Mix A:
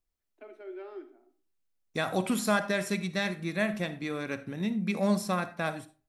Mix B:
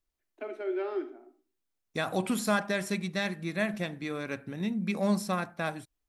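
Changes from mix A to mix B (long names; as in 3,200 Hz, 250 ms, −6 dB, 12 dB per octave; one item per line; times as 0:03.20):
first voice +10.0 dB
second voice: send off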